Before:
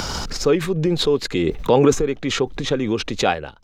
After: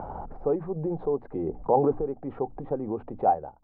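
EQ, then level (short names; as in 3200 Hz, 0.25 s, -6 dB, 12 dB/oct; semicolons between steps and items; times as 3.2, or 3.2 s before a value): ladder low-pass 870 Hz, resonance 65%; notches 60/120/180/240/300 Hz; 0.0 dB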